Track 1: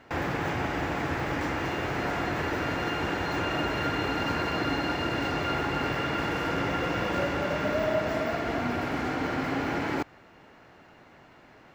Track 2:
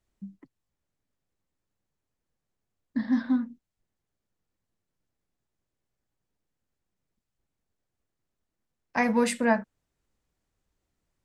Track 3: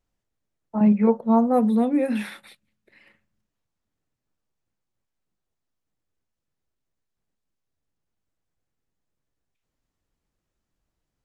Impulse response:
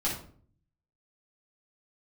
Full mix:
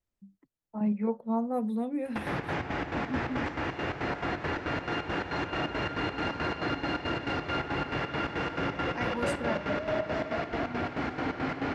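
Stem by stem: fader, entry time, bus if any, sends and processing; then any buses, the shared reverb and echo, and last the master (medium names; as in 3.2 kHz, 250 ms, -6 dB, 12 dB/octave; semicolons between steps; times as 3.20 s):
-0.5 dB, 2.05 s, no send, low-pass 4.8 kHz 12 dB/octave; square tremolo 4.6 Hz, depth 65%, duty 60%; saturation -20.5 dBFS, distortion -21 dB
-11.5 dB, 0.00 s, no send, none
-11.0 dB, 0.00 s, no send, none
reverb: none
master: none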